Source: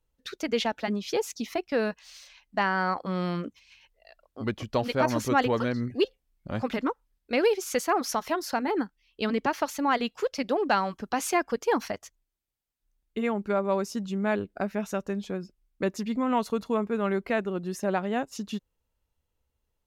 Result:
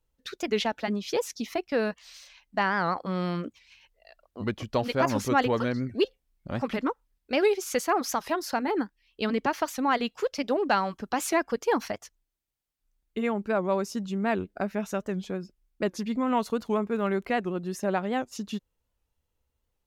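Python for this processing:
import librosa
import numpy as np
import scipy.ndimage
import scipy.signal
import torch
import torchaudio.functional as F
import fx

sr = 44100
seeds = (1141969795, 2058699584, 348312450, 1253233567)

y = fx.dmg_crackle(x, sr, seeds[0], per_s=24.0, level_db=-45.0, at=(16.24, 17.33), fade=0.02)
y = fx.record_warp(y, sr, rpm=78.0, depth_cents=160.0)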